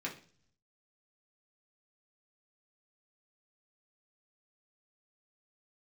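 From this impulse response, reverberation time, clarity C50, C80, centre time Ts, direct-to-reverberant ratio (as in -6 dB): 0.45 s, 11.0 dB, 16.0 dB, 17 ms, -3.0 dB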